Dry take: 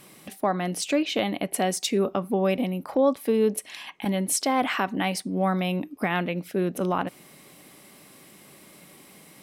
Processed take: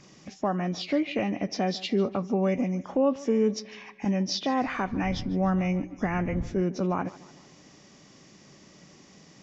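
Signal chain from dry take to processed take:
hearing-aid frequency compression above 1,600 Hz 1.5 to 1
0:04.65–0:06.61: wind on the microphone 190 Hz −37 dBFS
low-shelf EQ 210 Hz +9.5 dB
tape delay 149 ms, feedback 51%, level −18 dB, low-pass 5,900 Hz
level −4.5 dB

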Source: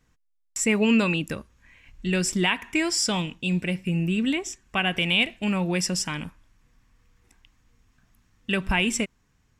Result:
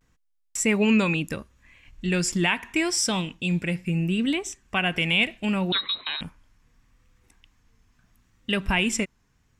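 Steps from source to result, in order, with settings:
pitch vibrato 0.74 Hz 68 cents
0:05.72–0:06.21: voice inversion scrambler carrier 4,000 Hz

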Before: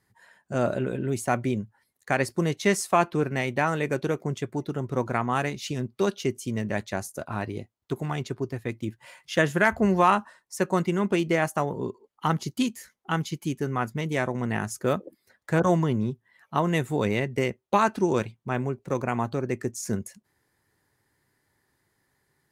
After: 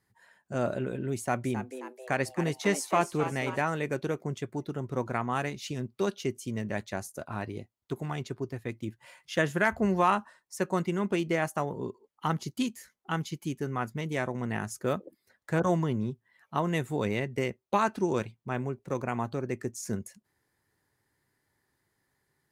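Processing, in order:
0:01.17–0:03.61: echo with shifted repeats 267 ms, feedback 51%, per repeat +130 Hz, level −10.5 dB
level −4.5 dB

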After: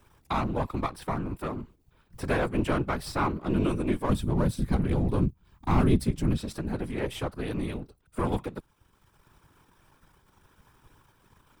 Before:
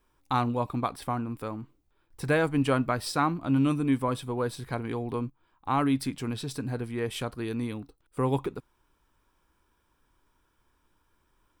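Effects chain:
gain on one half-wave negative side −7 dB
0:04.09–0:06.37: bass and treble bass +14 dB, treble +4 dB
random phases in short frames
multiband upward and downward compressor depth 40%

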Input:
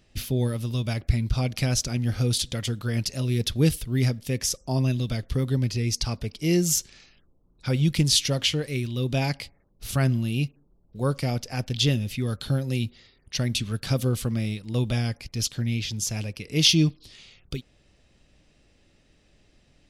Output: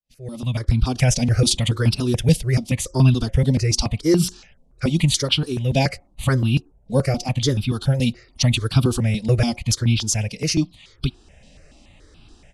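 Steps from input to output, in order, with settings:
fade in at the beginning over 1.80 s
low-pass filter 10,000 Hz 24 dB per octave
hum removal 180 Hz, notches 4
automatic gain control gain up to 16 dB
phase-vocoder stretch with locked phases 0.63×
step-sequenced phaser 7 Hz 350–1,900 Hz

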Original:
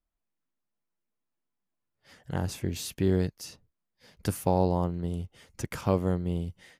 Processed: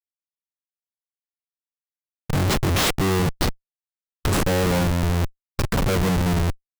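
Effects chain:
automatic gain control gain up to 11 dB
dynamic equaliser 580 Hz, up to +6 dB, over −28 dBFS, Q 0.77
comparator with hysteresis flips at −25.5 dBFS
formants moved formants −3 semitones

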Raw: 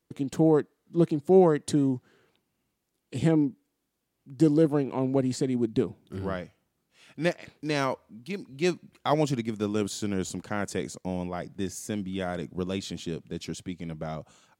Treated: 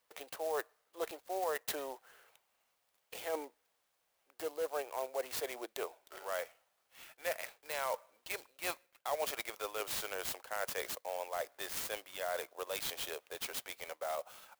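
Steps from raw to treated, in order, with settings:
Butterworth high-pass 540 Hz 36 dB per octave
reversed playback
downward compressor 4 to 1, threshold −40 dBFS, peak gain reduction 15.5 dB
reversed playback
converter with an unsteady clock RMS 0.043 ms
level +4.5 dB

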